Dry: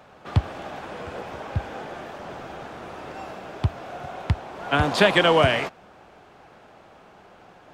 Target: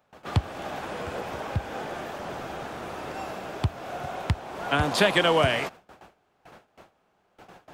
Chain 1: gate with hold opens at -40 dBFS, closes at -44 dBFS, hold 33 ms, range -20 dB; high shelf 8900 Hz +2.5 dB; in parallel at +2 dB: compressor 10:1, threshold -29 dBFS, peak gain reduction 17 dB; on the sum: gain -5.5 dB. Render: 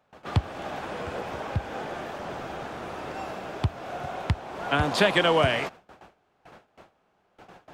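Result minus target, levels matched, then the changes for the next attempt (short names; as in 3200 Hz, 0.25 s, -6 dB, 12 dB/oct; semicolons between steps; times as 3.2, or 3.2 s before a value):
8000 Hz band -3.0 dB
change: high shelf 8900 Hz +11 dB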